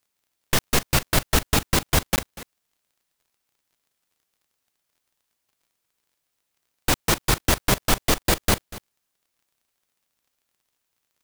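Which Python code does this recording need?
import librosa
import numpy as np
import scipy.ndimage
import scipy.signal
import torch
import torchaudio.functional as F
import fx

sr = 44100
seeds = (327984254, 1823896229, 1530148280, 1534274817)

y = fx.fix_declick_ar(x, sr, threshold=6.5)
y = fx.fix_interpolate(y, sr, at_s=(2.16, 8.23), length_ms=19.0)
y = fx.fix_echo_inverse(y, sr, delay_ms=241, level_db=-18.0)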